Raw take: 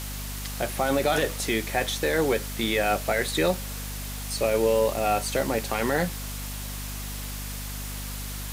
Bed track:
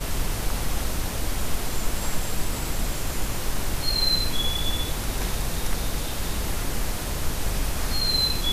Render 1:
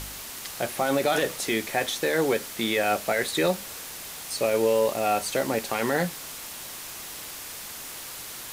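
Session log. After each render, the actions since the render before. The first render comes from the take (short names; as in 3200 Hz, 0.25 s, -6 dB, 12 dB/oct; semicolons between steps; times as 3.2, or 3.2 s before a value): de-hum 50 Hz, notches 5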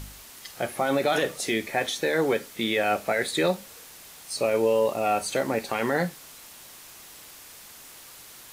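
noise print and reduce 8 dB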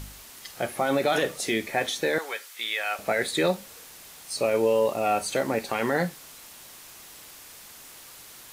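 2.18–2.99 HPF 1100 Hz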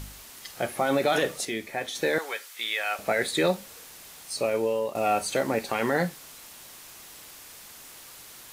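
1.45–1.95 gain -5.5 dB; 4.22–4.95 fade out, to -8 dB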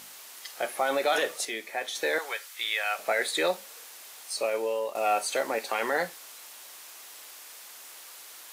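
HPF 490 Hz 12 dB/oct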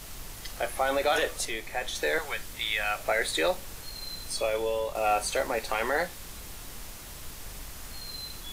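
add bed track -17.5 dB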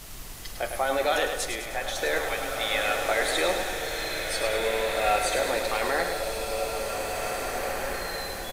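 feedback echo 0.103 s, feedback 56%, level -7 dB; bloom reverb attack 2.12 s, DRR 2 dB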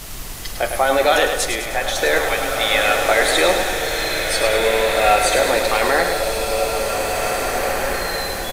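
gain +9.5 dB; limiter -3 dBFS, peak gain reduction 1.5 dB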